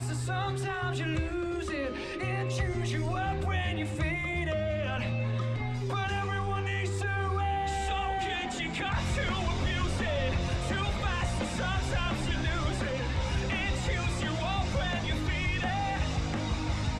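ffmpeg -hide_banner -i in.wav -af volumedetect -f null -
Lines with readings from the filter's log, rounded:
mean_volume: -30.4 dB
max_volume: -18.2 dB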